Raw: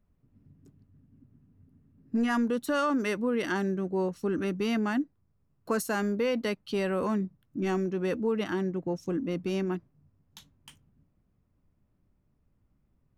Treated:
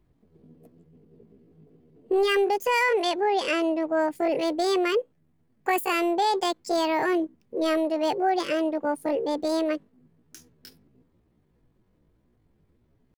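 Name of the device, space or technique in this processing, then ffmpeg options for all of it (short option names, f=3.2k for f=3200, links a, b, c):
chipmunk voice: -filter_complex "[0:a]asetrate=74167,aresample=44100,atempo=0.594604,asettb=1/sr,asplit=3[a][b][c];[a]atrim=end=2.894[d];[b]atrim=start=2.89:end=4.01,asetpts=PTS-STARTPTS,afade=t=in:d=0.004:c=qsin,afade=t=out:st=1.116:d=0.004:c=qsin,lowpass=9.2k[e];[c]atrim=start=4.006[f];[d][e]acrossfade=d=0.004:c1=hsin:c2=qsin[g];[g][f]acrossfade=d=0.004:c1=qsin:c2=hsin,volume=4.5dB"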